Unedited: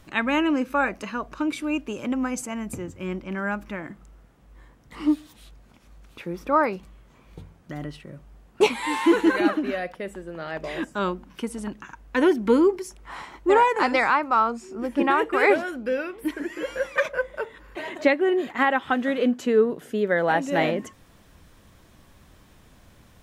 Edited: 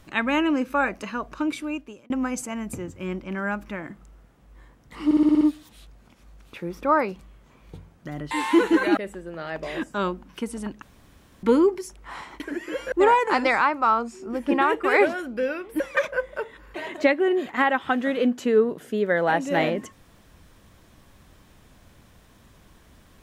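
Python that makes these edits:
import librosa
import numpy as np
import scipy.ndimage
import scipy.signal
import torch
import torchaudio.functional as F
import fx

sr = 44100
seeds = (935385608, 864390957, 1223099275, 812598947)

y = fx.edit(x, sr, fx.fade_out_span(start_s=1.5, length_s=0.6),
    fx.stutter(start_s=5.05, slice_s=0.06, count=7),
    fx.cut(start_s=7.95, length_s=0.89),
    fx.cut(start_s=9.5, length_s=0.48),
    fx.room_tone_fill(start_s=11.83, length_s=0.61),
    fx.move(start_s=16.29, length_s=0.52, to_s=13.41), tone=tone)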